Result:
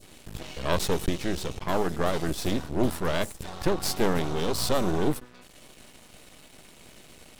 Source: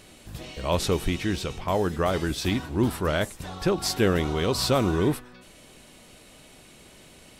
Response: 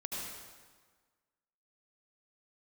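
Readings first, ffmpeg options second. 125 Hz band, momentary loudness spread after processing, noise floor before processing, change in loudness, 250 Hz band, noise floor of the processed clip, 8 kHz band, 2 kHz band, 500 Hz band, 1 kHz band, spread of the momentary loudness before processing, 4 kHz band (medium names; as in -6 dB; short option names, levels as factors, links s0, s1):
-4.5 dB, 8 LU, -51 dBFS, -2.5 dB, -3.0 dB, -53 dBFS, -1.0 dB, -3.0 dB, -2.5 dB, -1.0 dB, 9 LU, -3.0 dB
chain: -af "aeval=exprs='max(val(0),0)':c=same,adynamicequalizer=threshold=0.00501:dfrequency=2000:dqfactor=0.72:tfrequency=2000:tqfactor=0.72:attack=5:release=100:ratio=0.375:range=3:mode=cutabove:tftype=bell,volume=1.5"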